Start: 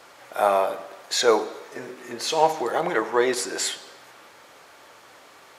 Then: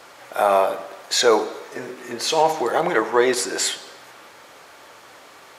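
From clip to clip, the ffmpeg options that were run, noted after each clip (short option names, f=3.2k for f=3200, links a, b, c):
-af "alimiter=level_in=8.5dB:limit=-1dB:release=50:level=0:latency=1,volume=-4.5dB"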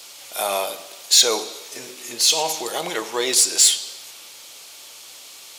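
-af "aexciter=amount=4.2:drive=8.8:freq=2.5k,volume=-7.5dB"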